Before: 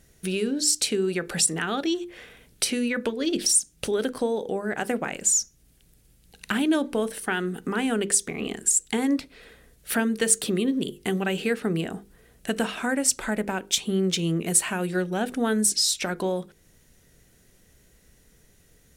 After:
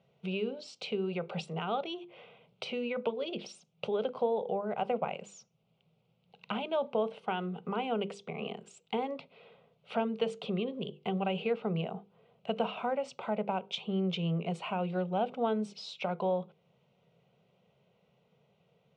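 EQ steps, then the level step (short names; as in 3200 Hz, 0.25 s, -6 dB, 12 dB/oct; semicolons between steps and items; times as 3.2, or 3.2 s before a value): elliptic band-pass 150–2800 Hz, stop band 70 dB; fixed phaser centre 720 Hz, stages 4; 0.0 dB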